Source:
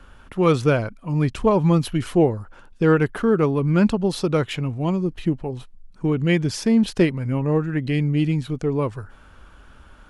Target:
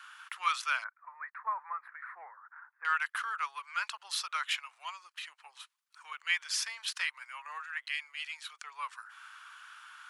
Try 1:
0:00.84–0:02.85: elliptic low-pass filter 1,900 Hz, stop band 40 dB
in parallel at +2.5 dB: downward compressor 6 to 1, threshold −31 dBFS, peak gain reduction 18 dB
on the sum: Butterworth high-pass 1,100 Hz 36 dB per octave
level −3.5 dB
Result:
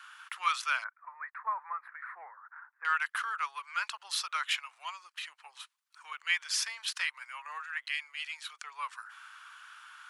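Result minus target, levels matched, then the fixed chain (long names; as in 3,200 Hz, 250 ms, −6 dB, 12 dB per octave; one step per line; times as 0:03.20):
downward compressor: peak gain reduction −6 dB
0:00.84–0:02.85: elliptic low-pass filter 1,900 Hz, stop band 40 dB
in parallel at +2.5 dB: downward compressor 6 to 1, threshold −38 dBFS, peak gain reduction 24 dB
on the sum: Butterworth high-pass 1,100 Hz 36 dB per octave
level −3.5 dB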